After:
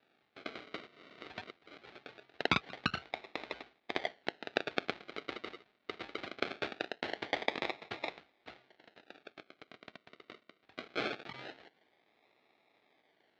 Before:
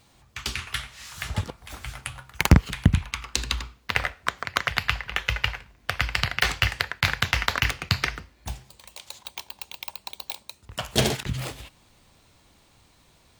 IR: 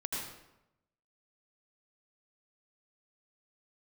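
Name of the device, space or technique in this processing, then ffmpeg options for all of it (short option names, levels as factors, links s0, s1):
circuit-bent sampling toy: -filter_complex "[0:a]asettb=1/sr,asplit=3[s0][s1][s2];[s0]atrim=end=2.494[s3];[s1]atrim=start=2.49:end=3.17,asetpts=PTS-STARTPTS,afade=t=in:d=0.004:c=qsin,afade=t=out:st=0.676:d=0.004:c=qsin,bass=f=250:g=5,treble=f=4000:g=-9[s4];[s2]atrim=start=3.166[s5];[s3][s4]acrossfade=d=0.004:c1=hsin:c2=qsin[s6];[s6][s5]acrossfade=d=0.004:c1=qsin:c2=hsin,acrusher=samples=41:mix=1:aa=0.000001:lfo=1:lforange=24.6:lforate=0.22,highpass=480,equalizer=f=530:t=q:w=4:g=-6,equalizer=f=1000:t=q:w=4:g=-7,equalizer=f=2200:t=q:w=4:g=4,equalizer=f=3900:t=q:w=4:g=5,lowpass=f=4100:w=0.5412,lowpass=f=4100:w=1.3066,volume=0.501"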